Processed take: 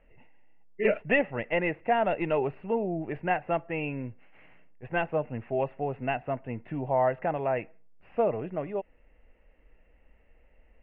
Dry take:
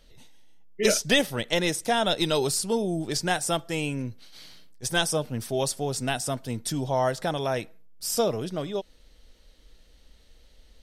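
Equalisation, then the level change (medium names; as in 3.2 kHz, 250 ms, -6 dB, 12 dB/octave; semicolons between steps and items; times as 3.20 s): rippled Chebyshev low-pass 2.8 kHz, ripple 6 dB; +1.0 dB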